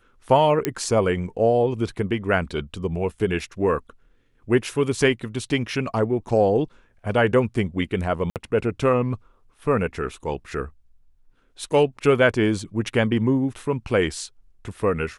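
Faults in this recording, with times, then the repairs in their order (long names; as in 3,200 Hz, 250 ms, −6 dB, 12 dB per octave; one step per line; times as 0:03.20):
0:00.65: click −6 dBFS
0:08.30–0:08.36: drop-out 58 ms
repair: click removal
repair the gap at 0:08.30, 58 ms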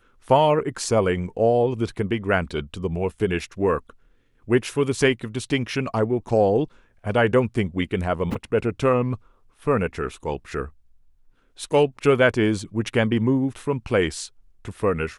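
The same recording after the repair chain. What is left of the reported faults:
none of them is left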